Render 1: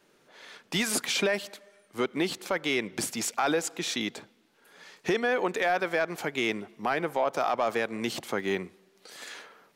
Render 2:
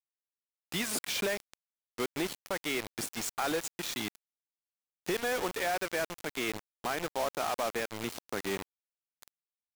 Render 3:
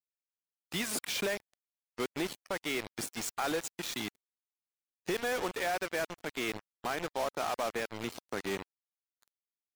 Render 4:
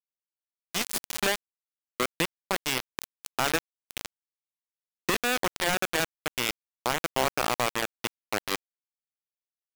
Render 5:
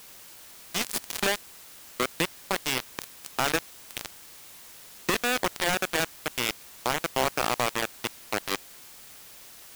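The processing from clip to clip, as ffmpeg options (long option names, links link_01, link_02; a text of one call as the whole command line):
ffmpeg -i in.wav -af "acrusher=bits=4:mix=0:aa=0.000001,volume=-6dB" out.wav
ffmpeg -i in.wav -af "afftdn=noise_reduction=16:noise_floor=-51,volume=-1dB" out.wav
ffmpeg -i in.wav -af "acrusher=bits=4:mix=0:aa=0.000001,volume=8.5dB" out.wav
ffmpeg -i in.wav -af "aeval=exprs='val(0)+0.5*0.0158*sgn(val(0))':channel_layout=same" out.wav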